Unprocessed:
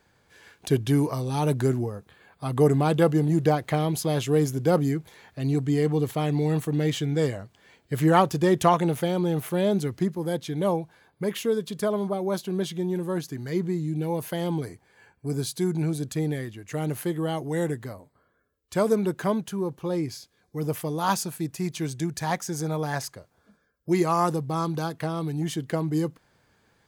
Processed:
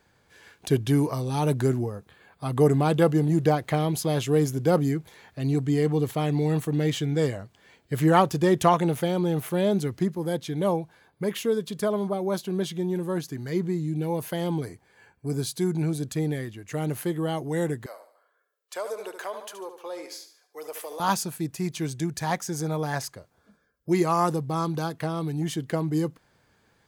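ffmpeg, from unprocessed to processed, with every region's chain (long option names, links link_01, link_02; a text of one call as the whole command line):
ffmpeg -i in.wav -filter_complex "[0:a]asettb=1/sr,asplit=3[link_01][link_02][link_03];[link_01]atrim=end=17.864[link_04];[link_02]atrim=start=17.86:end=21,asetpts=PTS-STARTPTS,afade=type=in:duration=0.004:curve=qsin,afade=type=out:start_time=3.136:duration=0.004:curve=qsin,highpass=frequency=490:width=0.5412,highpass=frequency=490:width=1.3066,aecho=1:1:73|146|219|292:0.282|0.116|0.0474|0.0194,atrim=end_sample=138474,acompressor=threshold=-33dB:ratio=2:attack=3.2:release=140:knee=1:detection=peak[link_05];[link_03]atrim=start=20.996[link_06];[link_04][link_05]acrossfade=duration=0.004:curve1=hsin:curve2=qsin[link_07];[link_07][link_06]acrossfade=duration=0.004:curve1=qsin:curve2=hsin" out.wav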